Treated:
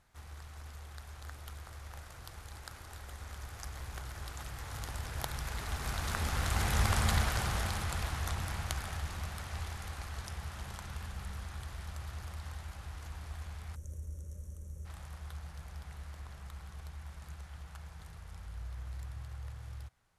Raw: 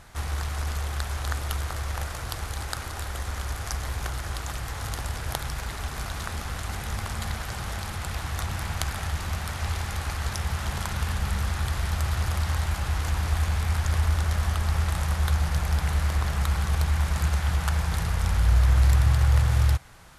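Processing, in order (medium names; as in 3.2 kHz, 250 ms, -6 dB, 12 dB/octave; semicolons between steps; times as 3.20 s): Doppler pass-by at 6.93 s, 7 m/s, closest 4 m; time-frequency box 13.75–14.86 s, 610–5500 Hz -21 dB; trim +2.5 dB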